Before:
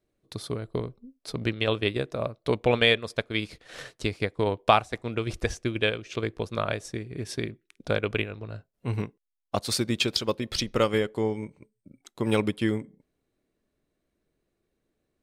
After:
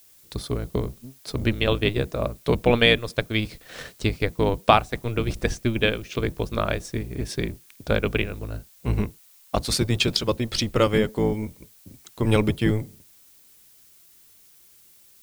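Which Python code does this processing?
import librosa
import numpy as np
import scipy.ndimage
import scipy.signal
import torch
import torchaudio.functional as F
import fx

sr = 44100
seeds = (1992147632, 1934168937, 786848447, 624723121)

y = fx.octave_divider(x, sr, octaves=1, level_db=0.0)
y = fx.dmg_noise_colour(y, sr, seeds[0], colour='blue', level_db=-57.0)
y = F.gain(torch.from_numpy(y), 3.0).numpy()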